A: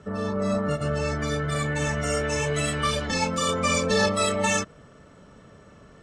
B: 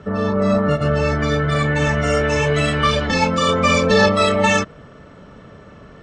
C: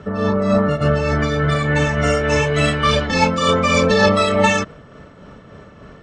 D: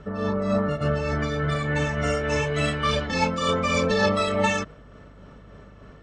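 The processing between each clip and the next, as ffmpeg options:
-af "lowpass=4300,volume=2.66"
-af "tremolo=f=3.4:d=0.4,volume=1.33"
-af "aeval=exprs='val(0)+0.00891*(sin(2*PI*50*n/s)+sin(2*PI*2*50*n/s)/2+sin(2*PI*3*50*n/s)/3+sin(2*PI*4*50*n/s)/4+sin(2*PI*5*50*n/s)/5)':c=same,volume=0.422"

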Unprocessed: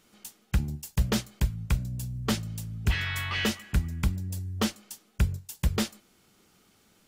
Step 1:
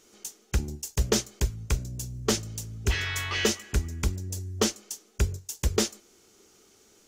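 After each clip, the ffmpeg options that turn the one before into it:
-af "equalizer=f=160:t=o:w=0.67:g=-8,equalizer=f=400:t=o:w=0.67:g=10,equalizer=f=6300:t=o:w=0.67:g=11"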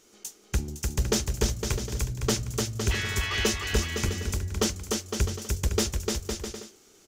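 -af "aecho=1:1:300|510|657|759.9|831.9:0.631|0.398|0.251|0.158|0.1,aeval=exprs='(tanh(4.47*val(0)+0.2)-tanh(0.2))/4.47':c=same"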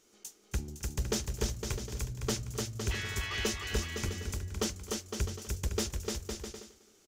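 -af "aecho=1:1:266:0.106,volume=0.447"

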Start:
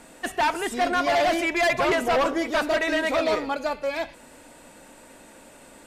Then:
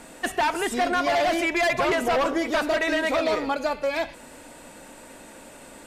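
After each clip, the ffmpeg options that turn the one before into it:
-af "acompressor=threshold=0.0631:ratio=6,volume=1.5"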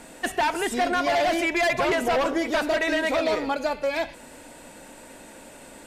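-af "equalizer=f=1200:t=o:w=0.22:g=-4"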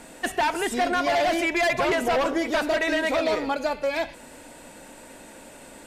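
-af anull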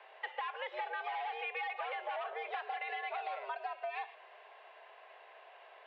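-af "highpass=f=410:t=q:w=0.5412,highpass=f=410:t=q:w=1.307,lowpass=f=3200:t=q:w=0.5176,lowpass=f=3200:t=q:w=0.7071,lowpass=f=3200:t=q:w=1.932,afreqshift=130,acompressor=threshold=0.0398:ratio=6,volume=0.376"

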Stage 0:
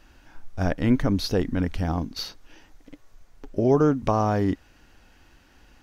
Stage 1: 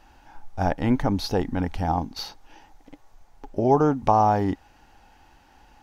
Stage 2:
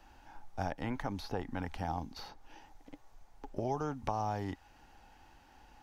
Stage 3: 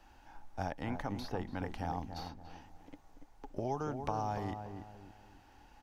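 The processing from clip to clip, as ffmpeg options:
-af "equalizer=f=830:w=3.5:g=14.5,volume=0.841"
-filter_complex "[0:a]acrossover=split=100|690|2200[s0][s1][s2][s3];[s0]acompressor=threshold=0.0112:ratio=4[s4];[s1]acompressor=threshold=0.02:ratio=4[s5];[s2]acompressor=threshold=0.02:ratio=4[s6];[s3]acompressor=threshold=0.00501:ratio=4[s7];[s4][s5][s6][s7]amix=inputs=4:normalize=0,volume=0.562"
-filter_complex "[0:a]asplit=2[s0][s1];[s1]adelay=287,lowpass=f=1100:p=1,volume=0.473,asplit=2[s2][s3];[s3]adelay=287,lowpass=f=1100:p=1,volume=0.38,asplit=2[s4][s5];[s5]adelay=287,lowpass=f=1100:p=1,volume=0.38,asplit=2[s6][s7];[s7]adelay=287,lowpass=f=1100:p=1,volume=0.38[s8];[s0][s2][s4][s6][s8]amix=inputs=5:normalize=0,volume=0.841"

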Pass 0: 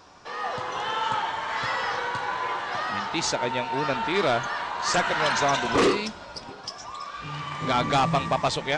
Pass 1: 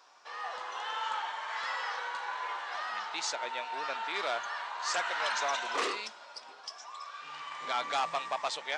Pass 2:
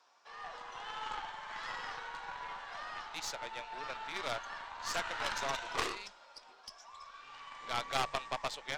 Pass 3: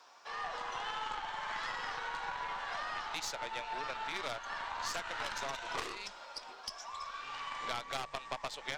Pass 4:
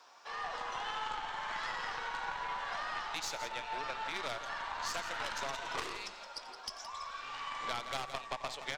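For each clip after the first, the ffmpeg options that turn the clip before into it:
-af "highpass=710,volume=0.447"
-af "aeval=exprs='0.119*(cos(1*acos(clip(val(0)/0.119,-1,1)))-cos(1*PI/2))+0.0211*(cos(3*acos(clip(val(0)/0.119,-1,1)))-cos(3*PI/2))+0.00168*(cos(8*acos(clip(val(0)/0.119,-1,1)))-cos(8*PI/2))':c=same,afreqshift=-22,aeval=exprs='0.141*(cos(1*acos(clip(val(0)/0.141,-1,1)))-cos(1*PI/2))+0.0224*(cos(3*acos(clip(val(0)/0.141,-1,1)))-cos(3*PI/2))+0.0178*(cos(4*acos(clip(val(0)/0.141,-1,1)))-cos(4*PI/2))':c=same,volume=1.68"
-af "acompressor=threshold=0.00631:ratio=6,volume=2.66"
-af "aecho=1:1:89|169:0.15|0.299"

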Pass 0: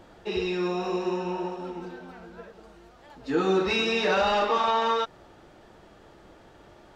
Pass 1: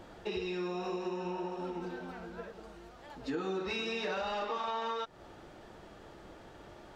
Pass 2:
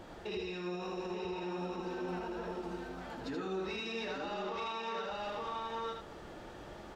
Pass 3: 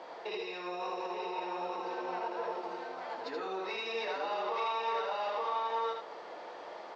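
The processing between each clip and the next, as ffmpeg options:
-af "acompressor=threshold=0.0178:ratio=4"
-filter_complex "[0:a]asplit=2[s0][s1];[s1]aecho=0:1:880:0.596[s2];[s0][s2]amix=inputs=2:normalize=0,alimiter=level_in=2.99:limit=0.0631:level=0:latency=1:release=32,volume=0.335,asplit=2[s3][s4];[s4]aecho=0:1:79:0.562[s5];[s3][s5]amix=inputs=2:normalize=0,volume=1.12"
-af "highpass=450,equalizer=f=480:t=q:w=4:g=8,equalizer=f=690:t=q:w=4:g=7,equalizer=f=1000:t=q:w=4:g=10,equalizer=f=2100:t=q:w=4:g=6,equalizer=f=4500:t=q:w=4:g=5,lowpass=f=6100:w=0.5412,lowpass=f=6100:w=1.3066"

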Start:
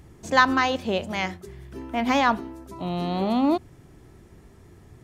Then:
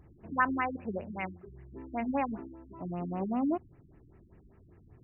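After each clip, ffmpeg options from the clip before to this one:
-af "afftfilt=real='re*lt(b*sr/1024,320*pow(3000/320,0.5+0.5*sin(2*PI*5.1*pts/sr)))':imag='im*lt(b*sr/1024,320*pow(3000/320,0.5+0.5*sin(2*PI*5.1*pts/sr)))':win_size=1024:overlap=0.75,volume=0.398"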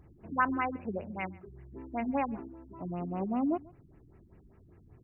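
-af "bandreject=f=1800:w=24,aecho=1:1:139:0.0668"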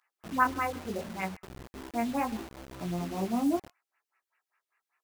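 -filter_complex "[0:a]bandreject=f=199.3:t=h:w=4,bandreject=f=398.6:t=h:w=4,bandreject=f=597.9:t=h:w=4,bandreject=f=797.2:t=h:w=4,flanger=delay=15.5:depth=5.9:speed=0.74,acrossover=split=1200[s0][s1];[s0]acrusher=bits=7:mix=0:aa=0.000001[s2];[s2][s1]amix=inputs=2:normalize=0,volume=1.68"

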